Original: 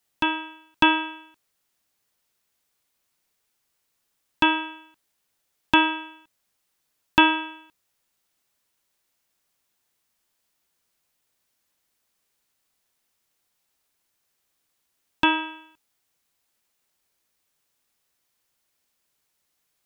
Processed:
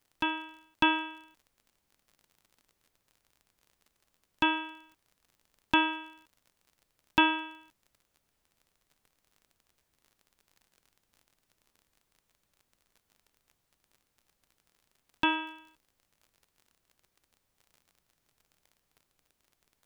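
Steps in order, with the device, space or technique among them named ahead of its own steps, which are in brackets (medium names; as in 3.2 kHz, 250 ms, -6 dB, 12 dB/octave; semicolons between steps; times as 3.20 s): vinyl LP (crackle 37 per s -41 dBFS; pink noise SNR 42 dB); trim -7 dB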